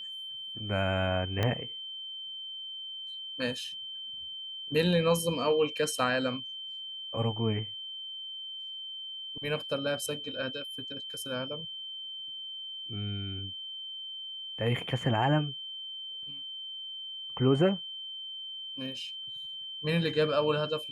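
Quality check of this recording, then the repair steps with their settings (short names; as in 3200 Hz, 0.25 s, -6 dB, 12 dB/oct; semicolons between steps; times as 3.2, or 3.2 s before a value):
tone 3100 Hz -38 dBFS
1.43 pop -15 dBFS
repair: de-click; notch 3100 Hz, Q 30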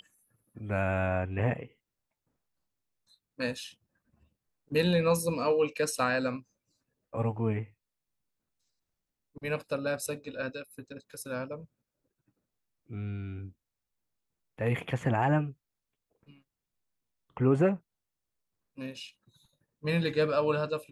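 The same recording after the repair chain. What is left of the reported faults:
1.43 pop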